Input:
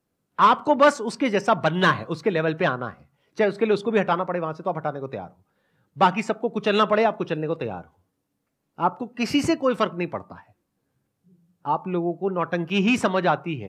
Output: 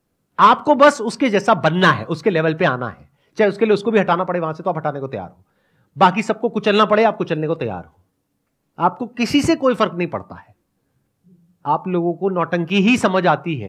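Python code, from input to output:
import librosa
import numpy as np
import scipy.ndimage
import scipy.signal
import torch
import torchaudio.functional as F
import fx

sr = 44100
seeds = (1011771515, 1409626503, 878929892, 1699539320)

y = fx.low_shelf(x, sr, hz=60.0, db=8.0)
y = F.gain(torch.from_numpy(y), 5.5).numpy()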